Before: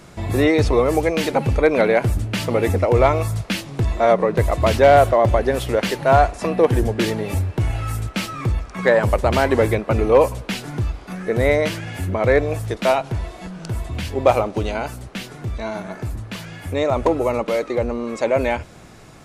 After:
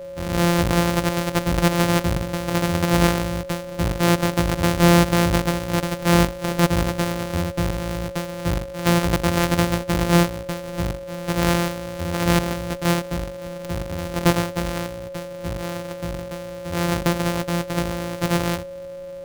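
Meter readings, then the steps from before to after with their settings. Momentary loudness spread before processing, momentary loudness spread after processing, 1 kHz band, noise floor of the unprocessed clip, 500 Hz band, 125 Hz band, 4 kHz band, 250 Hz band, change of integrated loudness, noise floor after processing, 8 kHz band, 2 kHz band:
13 LU, 12 LU, −4.0 dB, −42 dBFS, −7.0 dB, 0.0 dB, +3.0 dB, +2.5 dB, −2.5 dB, −35 dBFS, +6.0 dB, −1.5 dB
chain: samples sorted by size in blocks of 256 samples
steady tone 550 Hz −29 dBFS
level −3 dB

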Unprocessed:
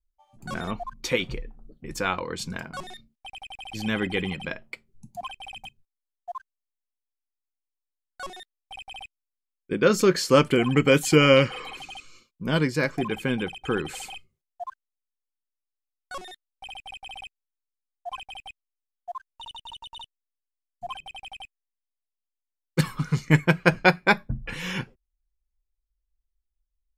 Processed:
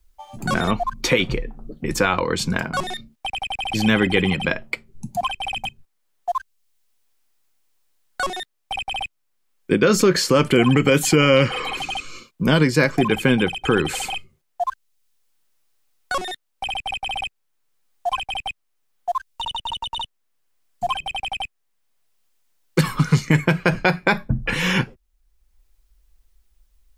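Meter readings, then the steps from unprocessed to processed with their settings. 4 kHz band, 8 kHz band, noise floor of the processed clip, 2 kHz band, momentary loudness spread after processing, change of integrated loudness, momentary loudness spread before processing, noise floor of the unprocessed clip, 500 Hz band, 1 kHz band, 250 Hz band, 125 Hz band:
+7.0 dB, +7.5 dB, −71 dBFS, +5.0 dB, 14 LU, +2.5 dB, 22 LU, below −85 dBFS, +3.5 dB, +6.5 dB, +6.0 dB, +5.5 dB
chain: boost into a limiter +14 dB
multiband upward and downward compressor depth 40%
level −4 dB

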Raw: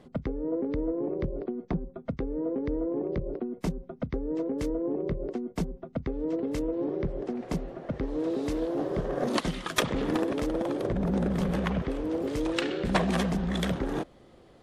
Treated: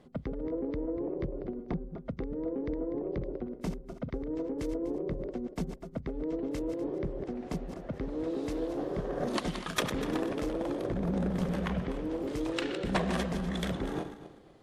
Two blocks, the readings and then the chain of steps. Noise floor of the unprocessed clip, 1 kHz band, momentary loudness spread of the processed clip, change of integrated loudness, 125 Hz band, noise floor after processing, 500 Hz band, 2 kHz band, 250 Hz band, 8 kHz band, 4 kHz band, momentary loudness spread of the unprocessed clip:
−55 dBFS, −4.0 dB, 7 LU, −4.0 dB, −4.0 dB, −51 dBFS, −4.0 dB, −4.0 dB, −4.0 dB, −4.0 dB, −4.0 dB, 7 LU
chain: feedback delay that plays each chunk backwards 123 ms, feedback 50%, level −9 dB
level −4.5 dB

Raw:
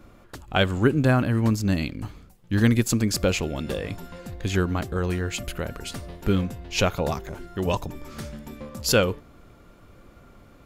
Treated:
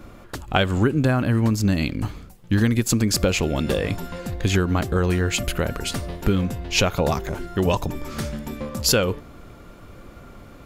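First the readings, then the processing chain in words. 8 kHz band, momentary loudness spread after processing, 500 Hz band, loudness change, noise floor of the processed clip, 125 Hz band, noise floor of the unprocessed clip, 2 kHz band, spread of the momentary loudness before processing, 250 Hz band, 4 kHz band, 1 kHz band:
+5.0 dB, 11 LU, +2.0 dB, +2.5 dB, −45 dBFS, +3.0 dB, −52 dBFS, +2.0 dB, 17 LU, +2.5 dB, +4.0 dB, +3.0 dB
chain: downward compressor 6 to 1, threshold −23 dBFS, peak gain reduction 9.5 dB
level +7.5 dB

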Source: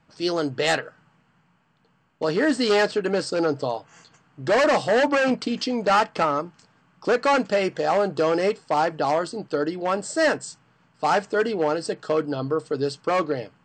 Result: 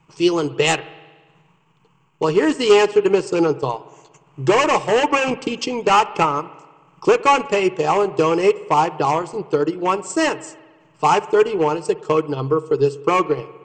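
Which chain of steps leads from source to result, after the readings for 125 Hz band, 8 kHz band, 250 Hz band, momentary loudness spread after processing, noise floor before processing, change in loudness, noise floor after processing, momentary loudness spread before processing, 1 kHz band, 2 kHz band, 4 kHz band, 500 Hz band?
+6.5 dB, +6.0 dB, +4.0 dB, 8 LU, −64 dBFS, +5.0 dB, −57 dBFS, 8 LU, +6.0 dB, +2.0 dB, +4.0 dB, +4.5 dB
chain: transient designer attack +3 dB, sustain −9 dB
EQ curve with evenly spaced ripples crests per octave 0.72, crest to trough 12 dB
spring reverb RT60 1.4 s, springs 59 ms, chirp 65 ms, DRR 17 dB
level +3 dB

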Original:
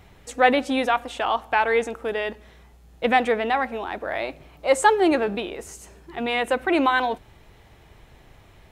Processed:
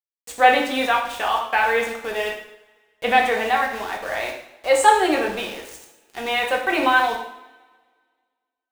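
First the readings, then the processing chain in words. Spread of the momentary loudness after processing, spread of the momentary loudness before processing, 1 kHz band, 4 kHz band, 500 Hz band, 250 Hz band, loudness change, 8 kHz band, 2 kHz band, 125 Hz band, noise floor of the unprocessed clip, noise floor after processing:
15 LU, 15 LU, +3.5 dB, +4.5 dB, 0.0 dB, −3.0 dB, +2.5 dB, +4.5 dB, +4.0 dB, can't be measured, −53 dBFS, −85 dBFS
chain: low-shelf EQ 500 Hz −10.5 dB
centre clipping without the shift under −37 dBFS
coupled-rooms reverb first 0.67 s, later 1.8 s, from −19 dB, DRR −0.5 dB
level +1.5 dB

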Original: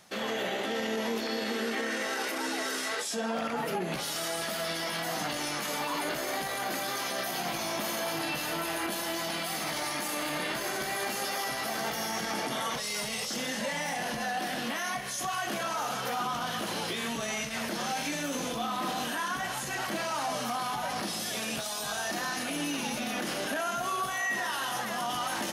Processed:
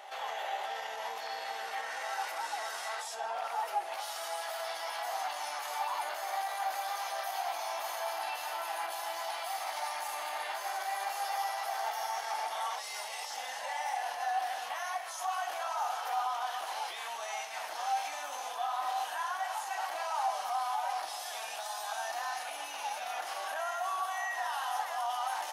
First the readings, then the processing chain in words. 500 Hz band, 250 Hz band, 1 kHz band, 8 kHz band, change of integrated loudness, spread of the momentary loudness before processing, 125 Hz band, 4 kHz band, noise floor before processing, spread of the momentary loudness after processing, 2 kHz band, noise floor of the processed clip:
−6.5 dB, below −30 dB, +1.0 dB, −8.0 dB, −4.0 dB, 1 LU, below −40 dB, −7.5 dB, −35 dBFS, 5 LU, −6.0 dB, −41 dBFS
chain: four-pole ladder high-pass 720 Hz, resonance 65%
on a send: backwards echo 560 ms −11.5 dB
on the sum: level +3 dB

